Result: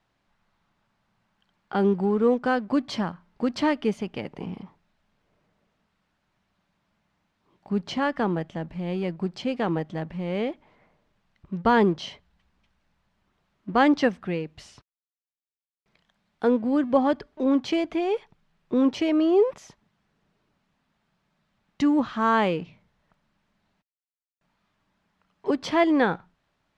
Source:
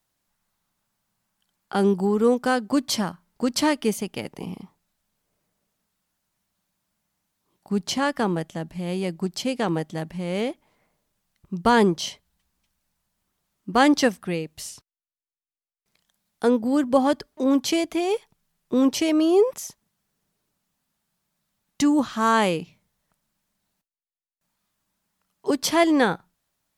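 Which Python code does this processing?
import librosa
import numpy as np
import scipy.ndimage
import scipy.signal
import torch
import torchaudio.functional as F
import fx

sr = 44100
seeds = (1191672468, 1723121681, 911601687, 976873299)

y = fx.law_mismatch(x, sr, coded='mu')
y = scipy.signal.sosfilt(scipy.signal.butter(2, 2900.0, 'lowpass', fs=sr, output='sos'), y)
y = y * 10.0 ** (-2.0 / 20.0)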